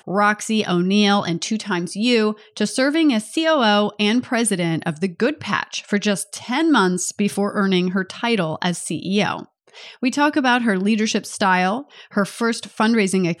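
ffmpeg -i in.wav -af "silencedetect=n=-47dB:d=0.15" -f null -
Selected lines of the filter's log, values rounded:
silence_start: 9.45
silence_end: 9.68 | silence_duration: 0.23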